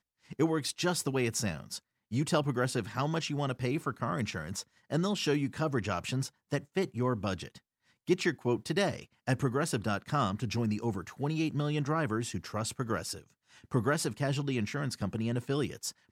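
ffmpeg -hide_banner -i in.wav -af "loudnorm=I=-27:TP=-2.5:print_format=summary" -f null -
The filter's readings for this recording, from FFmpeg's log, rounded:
Input Integrated:    -32.7 LUFS
Input True Peak:     -14.5 dBTP
Input LRA:             1.4 LU
Input Threshold:     -43.0 LUFS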